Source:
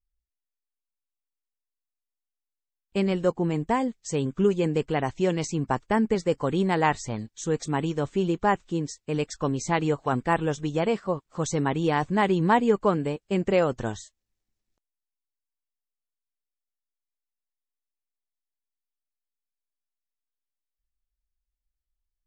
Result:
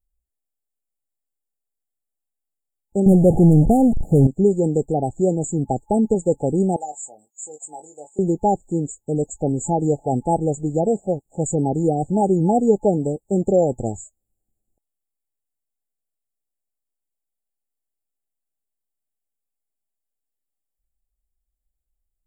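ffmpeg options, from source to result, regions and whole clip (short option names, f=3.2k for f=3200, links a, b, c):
-filter_complex "[0:a]asettb=1/sr,asplit=3[a][b][c];[a]atrim=end=3.064[d];[b]atrim=start=3.06:end=4.27,asetpts=PTS-STARTPTS,afade=t=in:d=0.004:c=qsin,afade=t=out:st=1.206:d=0.004:c=qsin,aeval=exprs='val(0)+0.5*0.0531*sgn(val(0))':c=same,bass=f=250:g=9,treble=f=4k:g=-10,adynamicsmooth=sensitivity=7:basefreq=820[e];[c]atrim=start=4.266[f];[d][e]acrossfade=d=0.004:c1=hsin:c2=qsin[g];[g][f]acrossfade=d=0.004:c1=qsin:c2=hsin,asettb=1/sr,asplit=3[h][i][j];[h]atrim=end=6.764[k];[i]atrim=start=6.76:end=8.19,asetpts=PTS-STARTPTS,afade=t=in:d=0.004:c=qsin,afade=t=out:st=1.426:d=0.004:c=qsin,highpass=1.3k,asplit=2[l][m];[m]adelay=20,volume=-7dB[n];[l][n]amix=inputs=2:normalize=0,atrim=end_sample=63063[o];[j]atrim=start=8.186[p];[k][o]acrossfade=d=0.004:c1=hsin:c2=qsin[q];[q][p]acrossfade=d=0.004:c1=qsin:c2=hsin,afftfilt=real='re*(1-between(b*sr/4096,860,6800))':imag='im*(1-between(b*sr/4096,860,6800))':win_size=4096:overlap=0.75,adynamicequalizer=threshold=0.00447:dfrequency=3700:dqfactor=0.7:tfrequency=3700:tqfactor=0.7:attack=5:release=100:ratio=0.375:range=2.5:mode=boostabove:tftype=highshelf,volume=5.5dB"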